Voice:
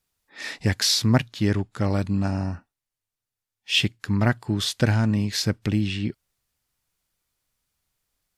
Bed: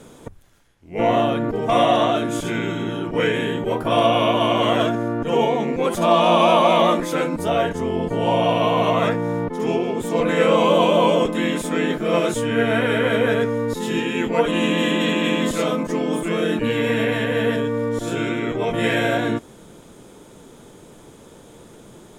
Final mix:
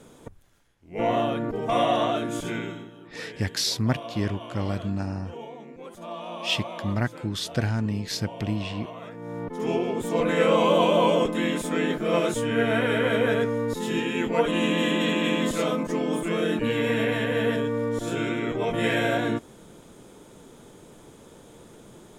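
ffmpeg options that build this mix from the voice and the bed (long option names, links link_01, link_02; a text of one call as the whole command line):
ffmpeg -i stem1.wav -i stem2.wav -filter_complex "[0:a]adelay=2750,volume=-5dB[link_01];[1:a]volume=11dB,afade=type=out:start_time=2.53:duration=0.37:silence=0.177828,afade=type=in:start_time=9.11:duration=0.65:silence=0.141254[link_02];[link_01][link_02]amix=inputs=2:normalize=0" out.wav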